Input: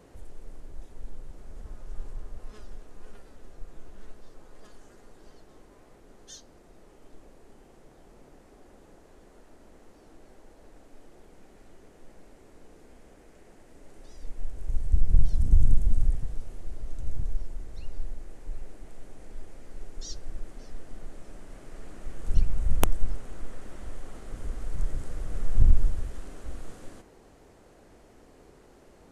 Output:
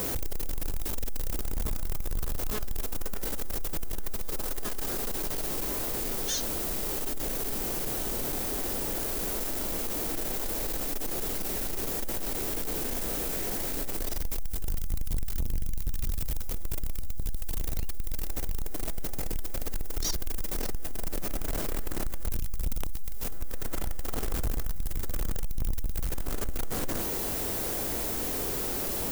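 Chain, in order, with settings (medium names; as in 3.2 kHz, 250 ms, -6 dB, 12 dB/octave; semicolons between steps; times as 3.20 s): compression 6:1, threshold -32 dBFS, peak gain reduction 20 dB; added noise violet -53 dBFS; power-law waveshaper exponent 0.35; trim +2 dB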